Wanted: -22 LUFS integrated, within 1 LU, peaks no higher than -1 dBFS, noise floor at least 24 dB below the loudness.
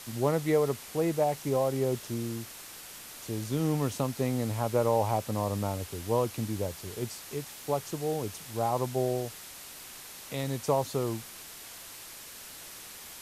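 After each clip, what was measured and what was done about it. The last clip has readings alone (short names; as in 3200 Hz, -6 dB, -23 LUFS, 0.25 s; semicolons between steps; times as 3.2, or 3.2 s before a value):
noise floor -46 dBFS; noise floor target -55 dBFS; loudness -31.0 LUFS; peak -13.0 dBFS; loudness target -22.0 LUFS
-> noise print and reduce 9 dB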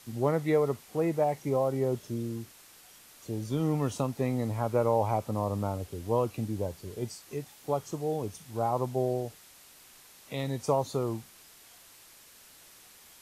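noise floor -55 dBFS; loudness -31.0 LUFS; peak -13.5 dBFS; loudness target -22.0 LUFS
-> gain +9 dB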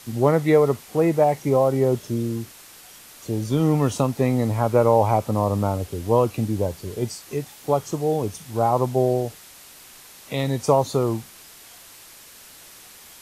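loudness -22.0 LUFS; peak -4.5 dBFS; noise floor -46 dBFS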